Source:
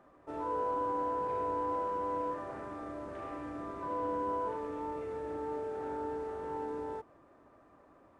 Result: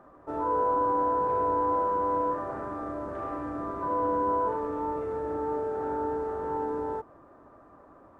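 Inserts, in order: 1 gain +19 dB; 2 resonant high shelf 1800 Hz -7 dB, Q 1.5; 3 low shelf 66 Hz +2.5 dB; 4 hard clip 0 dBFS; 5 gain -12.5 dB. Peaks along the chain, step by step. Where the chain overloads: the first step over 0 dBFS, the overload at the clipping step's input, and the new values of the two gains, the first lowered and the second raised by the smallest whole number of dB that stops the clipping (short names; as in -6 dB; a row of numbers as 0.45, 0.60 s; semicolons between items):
-5.0, -4.0, -4.0, -4.0, -16.5 dBFS; no overload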